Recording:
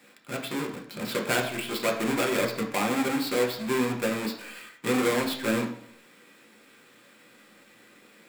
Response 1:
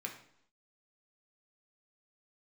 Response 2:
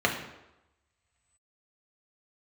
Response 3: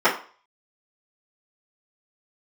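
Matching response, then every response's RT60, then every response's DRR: 1; 0.70, 0.95, 0.40 s; 0.5, 0.0, -11.5 dB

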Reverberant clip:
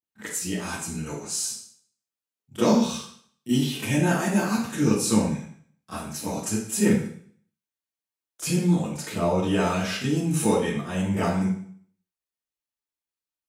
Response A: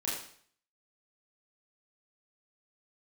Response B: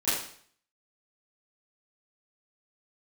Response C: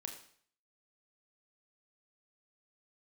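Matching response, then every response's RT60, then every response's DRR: B; 0.55, 0.55, 0.55 s; -7.0, -16.5, 3.0 dB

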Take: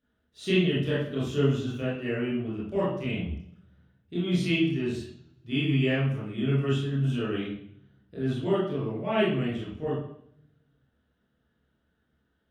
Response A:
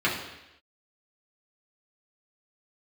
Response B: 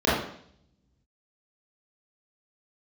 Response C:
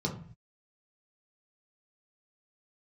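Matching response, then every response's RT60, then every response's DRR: B; 0.90, 0.65, 0.45 s; -7.0, -10.5, -1.5 dB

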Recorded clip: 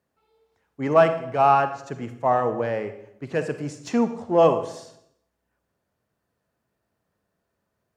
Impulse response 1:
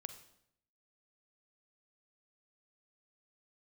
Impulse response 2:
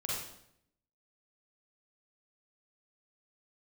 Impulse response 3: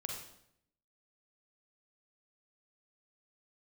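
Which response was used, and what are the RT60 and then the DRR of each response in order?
1; 0.75, 0.75, 0.75 s; 9.0, -6.0, 0.0 dB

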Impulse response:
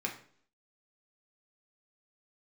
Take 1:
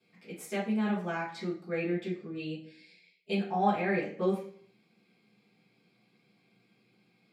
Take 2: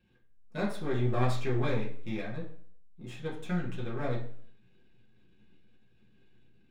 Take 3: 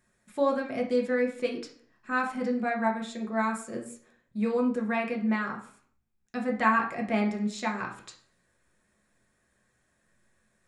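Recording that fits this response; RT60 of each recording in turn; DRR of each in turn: 3; 0.55, 0.55, 0.55 s; -11.0, -6.0, -0.5 dB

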